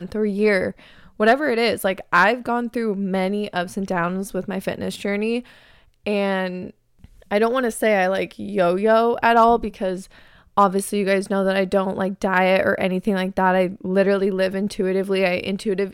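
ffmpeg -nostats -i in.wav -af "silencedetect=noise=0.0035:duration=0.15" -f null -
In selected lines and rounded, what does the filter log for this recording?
silence_start: 6.71
silence_end: 7.01 | silence_duration: 0.30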